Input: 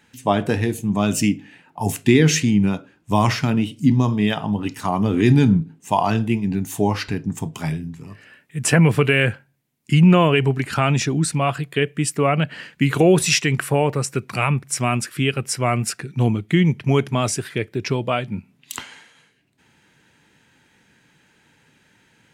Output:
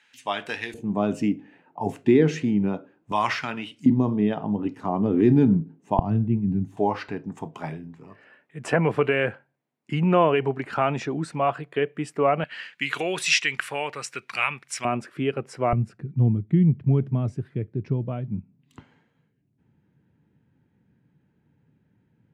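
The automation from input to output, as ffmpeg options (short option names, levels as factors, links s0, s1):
-af "asetnsamples=n=441:p=0,asendcmd='0.74 bandpass f 490;3.12 bandpass f 1600;3.86 bandpass f 370;5.99 bandpass f 130;6.77 bandpass f 690;12.44 bandpass f 2400;14.85 bandpass f 530;15.73 bandpass f 120',bandpass=f=2600:t=q:w=0.82:csg=0"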